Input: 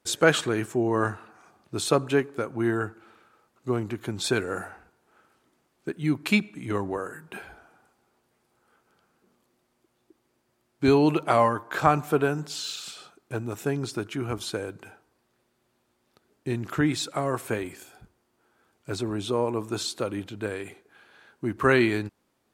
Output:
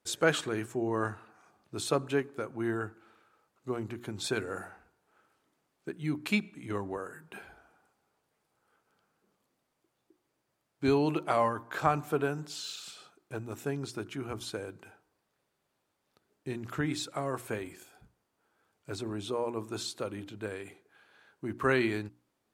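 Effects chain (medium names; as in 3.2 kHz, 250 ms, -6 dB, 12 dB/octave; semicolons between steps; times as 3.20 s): hum notches 60/120/180/240/300/360 Hz; trim -6.5 dB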